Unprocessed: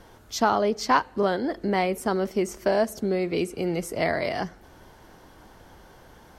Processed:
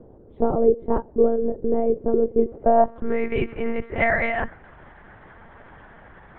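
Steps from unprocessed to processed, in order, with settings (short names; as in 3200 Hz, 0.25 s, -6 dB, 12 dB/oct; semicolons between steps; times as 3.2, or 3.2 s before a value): monotone LPC vocoder at 8 kHz 230 Hz; low-pass sweep 440 Hz -> 1900 Hz, 2.43–3.2; gain +2.5 dB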